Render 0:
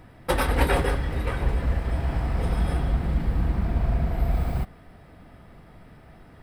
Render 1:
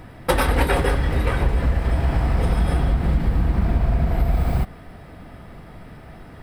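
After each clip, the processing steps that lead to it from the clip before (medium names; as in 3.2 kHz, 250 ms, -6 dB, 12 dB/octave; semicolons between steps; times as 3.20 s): compression 4:1, threshold -23 dBFS, peak gain reduction 7.5 dB; trim +8 dB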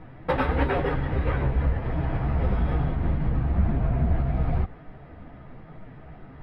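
chorus voices 4, 0.94 Hz, delay 11 ms, depth 4.7 ms; distance through air 380 m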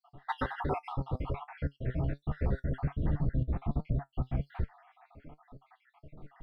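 random holes in the spectrogram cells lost 64%; flange 1.3 Hz, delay 6.5 ms, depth 1.4 ms, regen +64%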